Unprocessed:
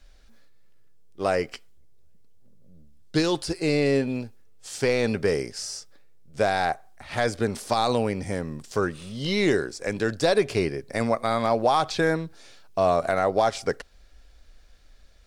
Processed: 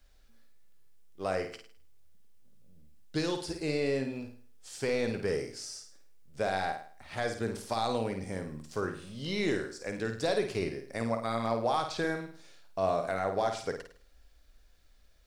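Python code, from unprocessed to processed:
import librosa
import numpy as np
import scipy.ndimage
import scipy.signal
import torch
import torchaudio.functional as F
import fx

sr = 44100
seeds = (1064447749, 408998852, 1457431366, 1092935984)

y = fx.quant_dither(x, sr, seeds[0], bits=12, dither='triangular')
y = fx.room_flutter(y, sr, wall_m=9.0, rt60_s=0.46)
y = F.gain(torch.from_numpy(y), -9.0).numpy()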